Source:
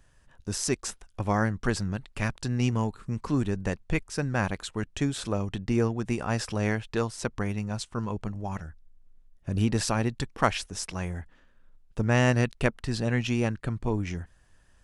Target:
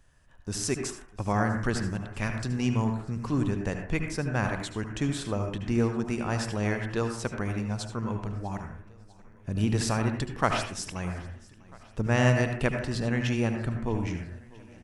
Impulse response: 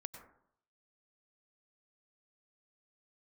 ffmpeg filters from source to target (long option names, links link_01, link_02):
-filter_complex "[0:a]aecho=1:1:647|1294|1941|2588:0.075|0.0435|0.0252|0.0146[link_01];[1:a]atrim=start_sample=2205,asetrate=57330,aresample=44100[link_02];[link_01][link_02]afir=irnorm=-1:irlink=0,volume=5.5dB"